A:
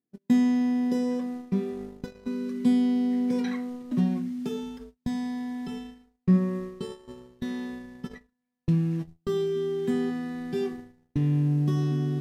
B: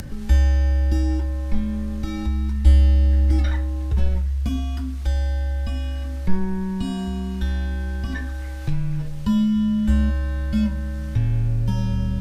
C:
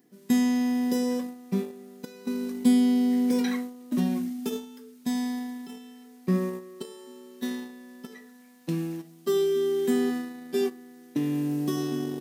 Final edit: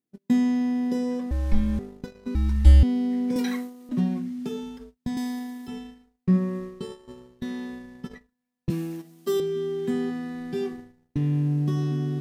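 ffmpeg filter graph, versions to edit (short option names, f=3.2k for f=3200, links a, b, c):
-filter_complex "[1:a]asplit=2[a][b];[2:a]asplit=3[c][d][e];[0:a]asplit=6[f][g][h][i][j][k];[f]atrim=end=1.312[l];[a]atrim=start=1.308:end=1.792[m];[g]atrim=start=1.788:end=2.352[n];[b]atrim=start=2.348:end=2.832[o];[h]atrim=start=2.828:end=3.362[p];[c]atrim=start=3.358:end=3.892[q];[i]atrim=start=3.888:end=5.172[r];[d]atrim=start=5.168:end=5.682[s];[j]atrim=start=5.678:end=8.702[t];[e]atrim=start=8.698:end=9.402[u];[k]atrim=start=9.398[v];[l][m]acrossfade=d=0.004:c1=hsin:c2=hsin[w];[w][n]acrossfade=d=0.004:c1=hsin:c2=hsin[x];[x][o]acrossfade=d=0.004:c1=hsin:c2=hsin[y];[y][p]acrossfade=d=0.004:c1=hsin:c2=hsin[z];[z][q]acrossfade=d=0.004:c1=hsin:c2=hsin[aa];[aa][r]acrossfade=d=0.004:c1=hsin:c2=hsin[ab];[ab][s]acrossfade=d=0.004:c1=hsin:c2=hsin[ac];[ac][t]acrossfade=d=0.004:c1=hsin:c2=hsin[ad];[ad][u]acrossfade=d=0.004:c1=hsin:c2=hsin[ae];[ae][v]acrossfade=d=0.004:c1=hsin:c2=hsin"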